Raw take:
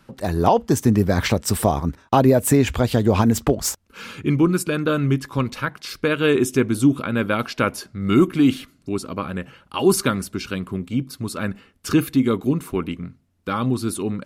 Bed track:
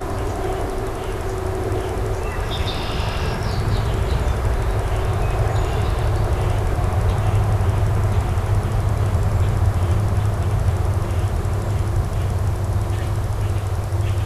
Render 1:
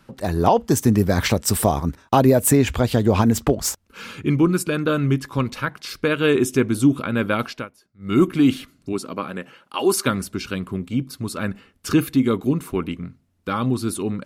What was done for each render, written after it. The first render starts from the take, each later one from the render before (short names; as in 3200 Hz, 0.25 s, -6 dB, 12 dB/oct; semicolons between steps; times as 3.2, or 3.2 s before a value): 0.63–2.51 high shelf 5800 Hz +5 dB; 7.44–8.22 dip -23 dB, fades 0.24 s; 8.92–10.05 HPF 150 Hz -> 370 Hz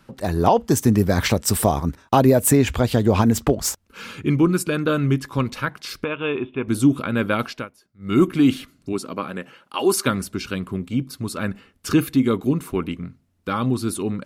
6.04–6.68 rippled Chebyshev low-pass 3600 Hz, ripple 9 dB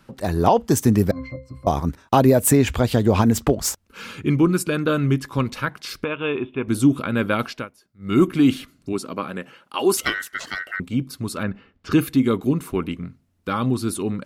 1.11–1.67 octave resonator C, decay 0.27 s; 9.97–10.8 ring modulator 1700 Hz; 11.43–11.92 air absorption 210 m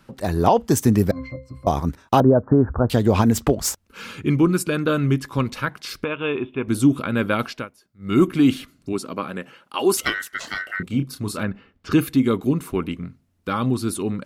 2.2–2.9 steep low-pass 1500 Hz 72 dB/oct; 10.41–11.45 doubler 29 ms -7.5 dB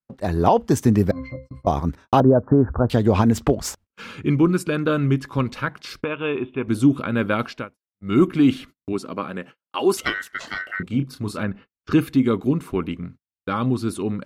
gate -39 dBFS, range -42 dB; LPF 3900 Hz 6 dB/oct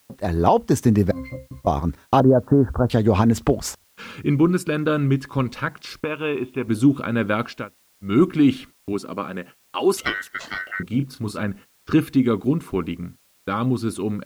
requantised 10-bit, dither triangular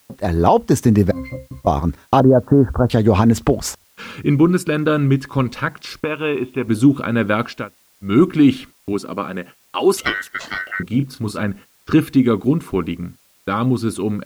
gain +4 dB; limiter -3 dBFS, peak gain reduction 2 dB